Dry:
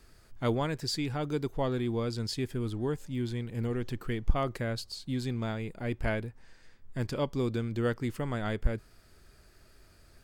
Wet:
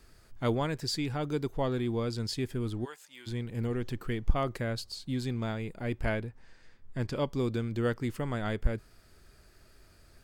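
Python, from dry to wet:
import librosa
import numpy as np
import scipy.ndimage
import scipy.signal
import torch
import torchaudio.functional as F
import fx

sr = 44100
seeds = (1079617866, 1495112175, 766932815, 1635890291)

y = fx.highpass(x, sr, hz=1100.0, slope=12, at=(2.84, 3.26), fade=0.02)
y = fx.high_shelf(y, sr, hz=9000.0, db=-9.0, at=(6.17, 7.14))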